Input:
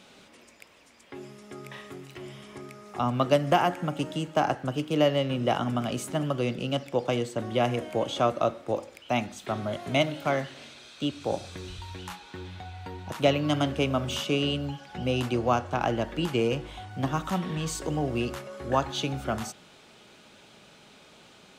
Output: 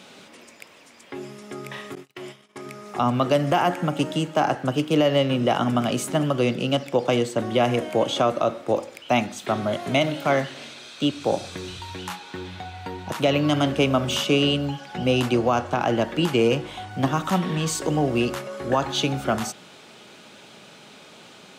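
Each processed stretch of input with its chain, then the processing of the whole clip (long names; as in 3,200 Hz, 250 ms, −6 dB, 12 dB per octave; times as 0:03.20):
0:01.95–0:02.66: low-shelf EQ 230 Hz −9 dB + noise gate −47 dBFS, range −30 dB
whole clip: high-pass filter 120 Hz; boost into a limiter +16 dB; level −9 dB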